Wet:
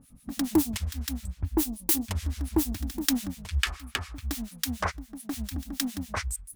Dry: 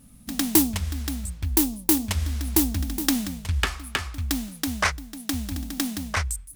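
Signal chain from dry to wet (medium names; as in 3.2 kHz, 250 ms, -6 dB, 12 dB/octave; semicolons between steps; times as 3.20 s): harmonic tremolo 7 Hz, depth 100%, crossover 1.3 kHz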